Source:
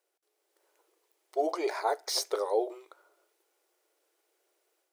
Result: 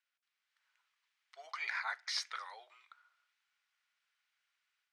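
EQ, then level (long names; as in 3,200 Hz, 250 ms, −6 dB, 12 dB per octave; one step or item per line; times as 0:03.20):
high-pass filter 1,400 Hz 24 dB per octave
low-pass filter 3,500 Hz 12 dB per octave
dynamic equaliser 1,900 Hz, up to +6 dB, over −59 dBFS, Q 1.8
+1.0 dB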